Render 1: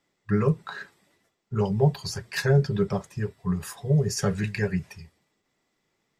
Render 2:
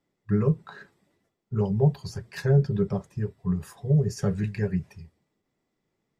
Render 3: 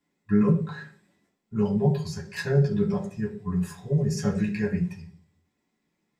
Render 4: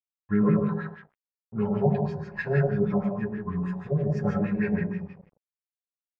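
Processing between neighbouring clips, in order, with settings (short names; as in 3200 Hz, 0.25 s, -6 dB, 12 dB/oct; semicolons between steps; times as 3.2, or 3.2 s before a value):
tilt shelf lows +5.5 dB, about 740 Hz; gain -4.5 dB
reverb RT60 0.40 s, pre-delay 3 ms, DRR -3.5 dB
digital reverb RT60 0.59 s, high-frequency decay 0.7×, pre-delay 60 ms, DRR 0 dB; crossover distortion -49 dBFS; LFO low-pass sine 6.3 Hz 660–2400 Hz; gain -3 dB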